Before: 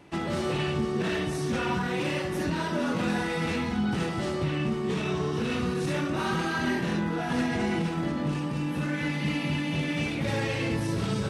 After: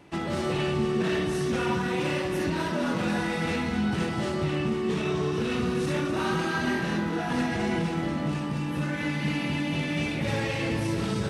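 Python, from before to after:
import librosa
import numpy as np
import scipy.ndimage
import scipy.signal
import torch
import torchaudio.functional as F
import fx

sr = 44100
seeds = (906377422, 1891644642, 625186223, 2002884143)

y = fx.echo_split(x, sr, split_hz=850.0, low_ms=178, high_ms=254, feedback_pct=52, wet_db=-9.5)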